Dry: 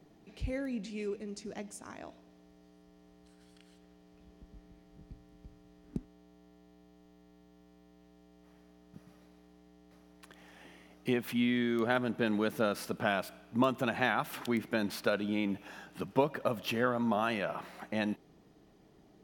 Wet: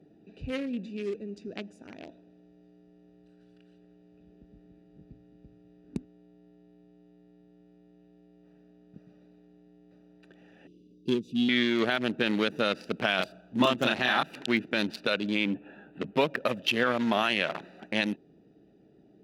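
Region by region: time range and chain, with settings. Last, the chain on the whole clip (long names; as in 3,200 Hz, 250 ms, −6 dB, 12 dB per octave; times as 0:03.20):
0:10.67–0:11.49: inverse Chebyshev band-stop filter 880–1,800 Hz, stop band 60 dB + linearly interpolated sample-rate reduction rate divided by 2×
0:13.16–0:14.23: parametric band 2,200 Hz −11.5 dB 0.21 octaves + double-tracking delay 32 ms −2.5 dB
0:15.46–0:16.16: moving average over 8 samples + double-tracking delay 14 ms −8.5 dB
whole clip: adaptive Wiener filter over 41 samples; meter weighting curve D; brickwall limiter −19 dBFS; level +6 dB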